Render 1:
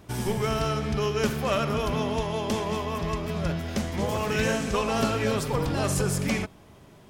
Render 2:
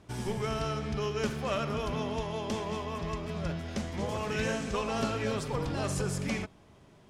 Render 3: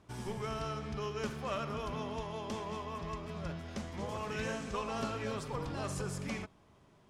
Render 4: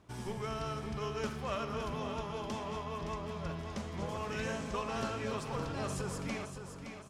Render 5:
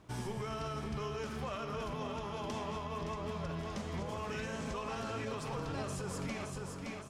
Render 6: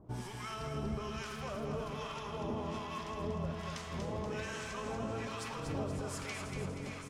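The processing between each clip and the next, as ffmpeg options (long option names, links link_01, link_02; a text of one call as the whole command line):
ffmpeg -i in.wav -af "lowpass=9100,volume=-6dB" out.wav
ffmpeg -i in.wav -af "equalizer=frequency=1100:width=2.1:gain=4,volume=-6.5dB" out.wav
ffmpeg -i in.wav -af "aecho=1:1:567|1134|1701|2268|2835:0.398|0.167|0.0702|0.0295|0.0124" out.wav
ffmpeg -i in.wav -af "alimiter=level_in=9dB:limit=-24dB:level=0:latency=1:release=131,volume=-9dB,flanger=delay=6.3:depth=6.6:regen=-69:speed=0.54:shape=sinusoidal,volume=7.5dB" out.wav
ffmpeg -i in.wav -filter_complex "[0:a]acrossover=split=910[link_01][link_02];[link_01]aeval=exprs='val(0)*(1-1/2+1/2*cos(2*PI*1.2*n/s))':channel_layout=same[link_03];[link_02]aeval=exprs='val(0)*(1-1/2-1/2*cos(2*PI*1.2*n/s))':channel_layout=same[link_04];[link_03][link_04]amix=inputs=2:normalize=0,aecho=1:1:239|478|717|956|1195|1434|1673:0.501|0.266|0.141|0.0746|0.0395|0.021|0.0111,volume=3.5dB" out.wav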